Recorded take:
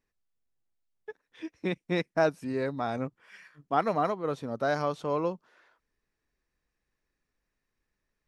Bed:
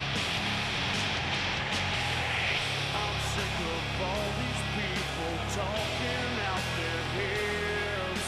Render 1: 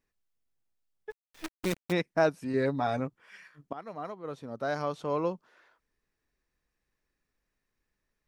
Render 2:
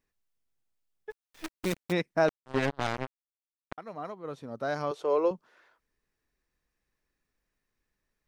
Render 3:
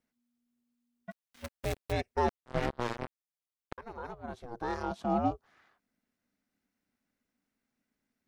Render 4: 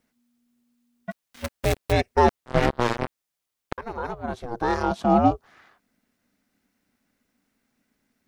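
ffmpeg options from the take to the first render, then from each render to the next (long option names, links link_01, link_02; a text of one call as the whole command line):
ffmpeg -i in.wav -filter_complex "[0:a]asplit=3[link_01][link_02][link_03];[link_01]afade=type=out:start_time=1.1:duration=0.02[link_04];[link_02]acrusher=bits=6:dc=4:mix=0:aa=0.000001,afade=type=in:start_time=1.1:duration=0.02,afade=type=out:start_time=1.91:duration=0.02[link_05];[link_03]afade=type=in:start_time=1.91:duration=0.02[link_06];[link_04][link_05][link_06]amix=inputs=3:normalize=0,asettb=1/sr,asplit=3[link_07][link_08][link_09];[link_07]atrim=end=2.534[link_10];[link_08]atrim=start=2.53:end=3,asetpts=PTS-STARTPTS,afade=type=in:duration=0.004:curve=qsin,afade=type=out:start_time=0.466:duration=0.004:curve=qsin,aecho=1:1:7.1:0.65,atrim=end_sample=20727[link_11];[link_09]atrim=start=2.996[link_12];[link_10][link_11]acrossfade=duration=0.004:curve1=hsin:curve2=qsin[link_13];[link_13][link_12]acrossfade=duration=0.004:curve1=qsin:curve2=hsin,asplit=2[link_14][link_15];[link_14]atrim=end=3.73,asetpts=PTS-STARTPTS,afade=type=out:start_time=3.726:duration=0.004:curve=hsin:silence=0.105925[link_16];[link_15]atrim=start=3.73,asetpts=PTS-STARTPTS,afade=type=in:duration=1.6:silence=0.105925[link_17];[link_16][link_17]concat=n=2:v=0:a=1" out.wav
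ffmpeg -i in.wav -filter_complex "[0:a]asettb=1/sr,asplit=3[link_01][link_02][link_03];[link_01]atrim=end=2.284[link_04];[link_02]atrim=start=2.28:end=3.78,asetpts=PTS-STARTPTS,afade=type=in:duration=0.004:curve=qsin,afade=type=out:start_time=1.496:duration=0.004:curve=qsin,acrusher=bits=3:mix=0:aa=0.5[link_05];[link_03]atrim=start=3.776[link_06];[link_04][link_05]acrossfade=duration=0.004:curve1=hsin:curve2=qsin[link_07];[link_07][link_06]acrossfade=duration=0.004:curve1=qsin:curve2=hsin,asettb=1/sr,asplit=3[link_08][link_09][link_10];[link_08]atrim=end=4.914[link_11];[link_09]atrim=start=4.91:end=5.31,asetpts=PTS-STARTPTS,afade=type=in:duration=0.004:curve=qsin,afade=type=out:start_time=0.396:duration=0.004:curve=qsin,lowshelf=frequency=280:width_type=q:width=3:gain=-12[link_12];[link_10]atrim=start=5.306[link_13];[link_11][link_12]acrossfade=duration=0.004:curve1=hsin:curve2=qsin[link_14];[link_14][link_13]acrossfade=duration=0.004:curve1=qsin:curve2=hsin" out.wav
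ffmpeg -i in.wav -filter_complex "[0:a]acrossover=split=850|6400[link_01][link_02][link_03];[link_02]asoftclip=type=tanh:threshold=-30dB[link_04];[link_01][link_04][link_03]amix=inputs=3:normalize=0,aeval=exprs='val(0)*sin(2*PI*240*n/s)':channel_layout=same" out.wav
ffmpeg -i in.wav -af "volume=11dB" out.wav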